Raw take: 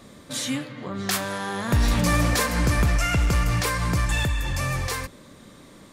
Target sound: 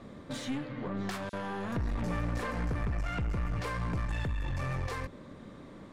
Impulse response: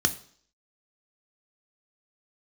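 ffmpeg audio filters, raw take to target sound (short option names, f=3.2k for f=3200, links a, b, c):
-filter_complex "[0:a]asettb=1/sr,asplit=3[a][b][c];[a]atrim=end=1.294[d];[b]atrim=start=1.29:end=3.58,asetpts=PTS-STARTPTS,afade=t=in:d=0.004:c=qsin,afade=t=out:st=2.286:d=0.004:c=qsin,acrossover=split=3700[e][f];[e]adelay=40[g];[g][f]amix=inputs=2:normalize=0,atrim=end_sample=100989[h];[c]atrim=start=3.576[i];[d][h]acrossfade=d=0.004:c1=hsin:c2=qsin[j];[j][i]acrossfade=d=0.004:c1=qsin:c2=hsin,acompressor=threshold=-30dB:ratio=3,equalizer=f=5.9k:w=0.37:g=-9,adynamicsmooth=sensitivity=6:basefreq=6k,aeval=exprs='(tanh(28.2*val(0)+0.4)-tanh(0.4))/28.2':c=same,volume=1.5dB"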